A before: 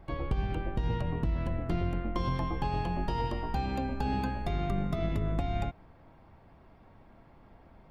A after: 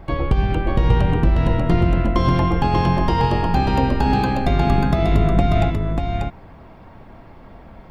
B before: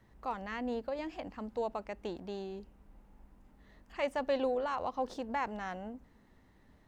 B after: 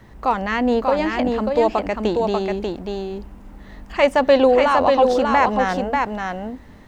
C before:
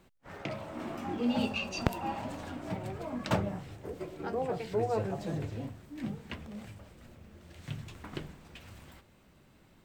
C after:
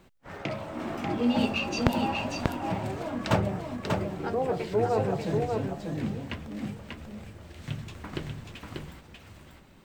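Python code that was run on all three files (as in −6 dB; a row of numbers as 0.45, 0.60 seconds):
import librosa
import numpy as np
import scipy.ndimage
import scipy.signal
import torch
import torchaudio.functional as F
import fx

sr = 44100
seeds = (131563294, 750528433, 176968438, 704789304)

p1 = fx.peak_eq(x, sr, hz=12000.0, db=-3.0, octaves=1.1)
p2 = p1 + fx.echo_single(p1, sr, ms=590, db=-4.0, dry=0)
y = p2 * 10.0 ** (-3 / 20.0) / np.max(np.abs(p2))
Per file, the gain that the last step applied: +13.0, +17.5, +4.5 decibels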